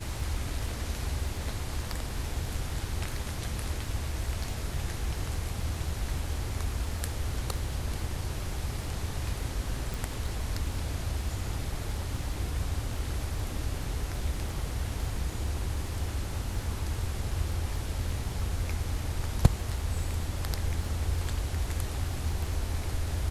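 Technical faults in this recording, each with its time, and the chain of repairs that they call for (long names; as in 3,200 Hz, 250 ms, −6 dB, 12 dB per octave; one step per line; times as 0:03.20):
surface crackle 28 per second −39 dBFS
0:09.94: click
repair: click removal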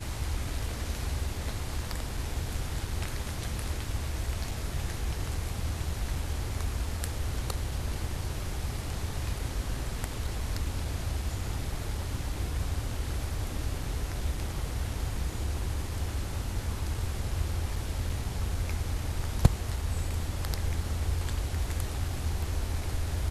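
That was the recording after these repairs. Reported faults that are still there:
none of them is left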